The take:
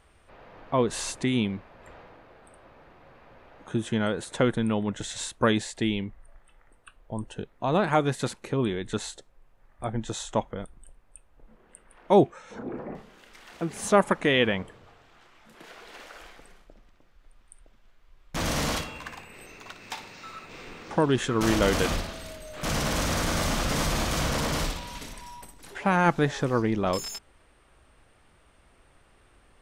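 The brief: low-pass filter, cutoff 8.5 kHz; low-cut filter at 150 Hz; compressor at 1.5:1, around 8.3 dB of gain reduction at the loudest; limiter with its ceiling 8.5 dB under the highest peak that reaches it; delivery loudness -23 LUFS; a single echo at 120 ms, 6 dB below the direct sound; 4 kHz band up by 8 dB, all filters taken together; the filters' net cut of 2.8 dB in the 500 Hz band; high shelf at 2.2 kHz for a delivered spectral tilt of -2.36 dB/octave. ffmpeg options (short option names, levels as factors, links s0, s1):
-af "highpass=150,lowpass=8500,equalizer=f=500:t=o:g=-4,highshelf=f=2200:g=7.5,equalizer=f=4000:t=o:g=3.5,acompressor=threshold=0.0126:ratio=1.5,alimiter=limit=0.0891:level=0:latency=1,aecho=1:1:120:0.501,volume=3.16"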